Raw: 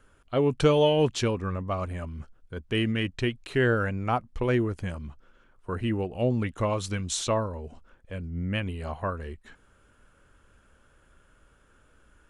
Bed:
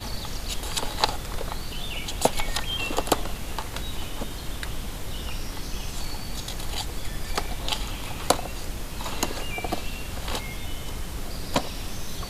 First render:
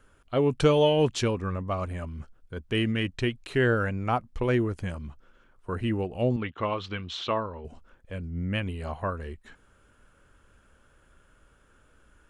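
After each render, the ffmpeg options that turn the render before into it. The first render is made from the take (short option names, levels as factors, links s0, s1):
-filter_complex "[0:a]asettb=1/sr,asplit=3[s0][s1][s2];[s0]atrim=end=6.364[s3];[s1]atrim=start=6.36:end=7.65,asetpts=PTS-STARTPTS,afade=t=in:d=0.004:c=qsin,afade=t=out:st=1.286:d=0.004:c=qsin,highpass=100,equalizer=f=120:t=q:w=4:g=-9,equalizer=f=190:t=q:w=4:g=-4,equalizer=f=270:t=q:w=4:g=-4,equalizer=f=580:t=q:w=4:g=-4,equalizer=f=1200:t=q:w=4:g=3,equalizer=f=3100:t=q:w=4:g=5,lowpass=f=3900:w=0.5412,lowpass=f=3900:w=1.3066[s4];[s2]atrim=start=7.646[s5];[s3][s4]acrossfade=d=0.004:c1=hsin:c2=qsin[s6];[s6][s5]acrossfade=d=0.004:c1=qsin:c2=hsin"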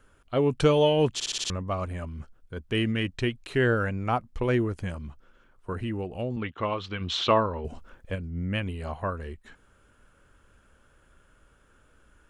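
-filter_complex "[0:a]asettb=1/sr,asplit=3[s0][s1][s2];[s0]atrim=end=5.724[s3];[s1]atrim=start=5.72:end=6.37,asetpts=PTS-STARTPTS,afade=t=in:d=0.004:c=qsin,afade=t=out:st=0.646:d=0.004:c=qsin,acompressor=threshold=0.0398:ratio=3:attack=3.2:release=140:knee=1:detection=peak[s4];[s2]atrim=start=6.366[s5];[s3][s4]acrossfade=d=0.004:c1=hsin:c2=qsin[s6];[s6][s5]acrossfade=d=0.004:c1=qsin:c2=hsin,asplit=3[s7][s8][s9];[s7]afade=t=out:st=7:d=0.02[s10];[s8]acontrast=68,afade=t=in:st=7:d=0.02,afade=t=out:st=8.14:d=0.02[s11];[s9]afade=t=in:st=8.14:d=0.02[s12];[s10][s11][s12]amix=inputs=3:normalize=0,asplit=7[s13][s14][s15][s16][s17][s18][s19];[s13]atrim=end=1.202[s20];[s14]atrim=start=1.138:end=1.202[s21];[s15]atrim=start=1.138:end=1.202[s22];[s16]atrim=start=1.138:end=1.202[s23];[s17]atrim=start=1.138:end=1.202[s24];[s18]atrim=start=1.138:end=1.202[s25];[s19]atrim=start=1.498[s26];[s20][s21]acrossfade=d=0.004:c1=hsin:c2=hsin[s27];[s27][s22]acrossfade=d=0.004:c1=hsin:c2=hsin[s28];[s28][s23]acrossfade=d=0.004:c1=hsin:c2=hsin[s29];[s29][s24]acrossfade=d=0.004:c1=hsin:c2=hsin[s30];[s30][s25]acrossfade=d=0.004:c1=hsin:c2=hsin[s31];[s31][s26]acrossfade=d=0.004:c1=hsin:c2=hsin"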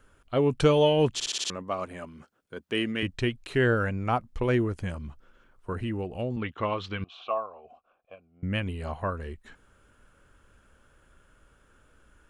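-filter_complex "[0:a]asettb=1/sr,asplit=3[s0][s1][s2];[s0]atrim=end=1.284[s3];[s1]atrim=start=1.28:end=3.03,asetpts=PTS-STARTPTS,afade=t=in:d=0.004:c=qsin,afade=t=out:st=1.746:d=0.004:c=qsin,highpass=230[s4];[s2]atrim=start=3.026[s5];[s3][s4]acrossfade=d=0.004:c1=hsin:c2=qsin[s6];[s6][s5]acrossfade=d=0.004:c1=qsin:c2=hsin,asettb=1/sr,asplit=3[s7][s8][s9];[s7]atrim=end=7.044[s10];[s8]atrim=start=7.04:end=8.43,asetpts=PTS-STARTPTS,afade=t=in:d=0.004:c=qsin,afade=t=out:st=1.386:d=0.004:c=qsin,asplit=3[s11][s12][s13];[s11]bandpass=f=730:t=q:w=8,volume=1[s14];[s12]bandpass=f=1090:t=q:w=8,volume=0.501[s15];[s13]bandpass=f=2440:t=q:w=8,volume=0.355[s16];[s14][s15][s16]amix=inputs=3:normalize=0[s17];[s9]atrim=start=8.426[s18];[s10][s17]acrossfade=d=0.004:c1=hsin:c2=qsin[s19];[s19][s18]acrossfade=d=0.004:c1=qsin:c2=hsin"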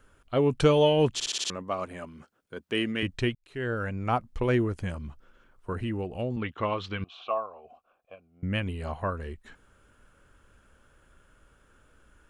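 -filter_complex "[0:a]asplit=2[s0][s1];[s0]atrim=end=3.35,asetpts=PTS-STARTPTS,afade=t=out:st=3.346:d=0.004:c=hsin[s2];[s1]atrim=start=3.35,asetpts=PTS-STARTPTS,afade=t=in:d=0.79[s3];[s2][s3]concat=n=2:v=0:a=1"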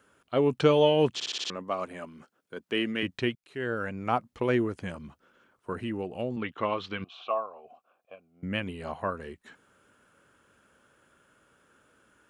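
-filter_complex "[0:a]highpass=160,acrossover=split=5600[s0][s1];[s1]acompressor=threshold=0.00126:ratio=4:attack=1:release=60[s2];[s0][s2]amix=inputs=2:normalize=0"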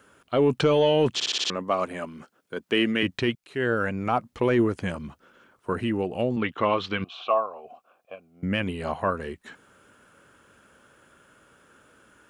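-af "acontrast=75,alimiter=limit=0.251:level=0:latency=1:release=11"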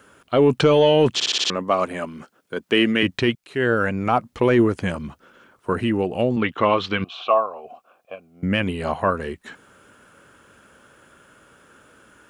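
-af "volume=1.78"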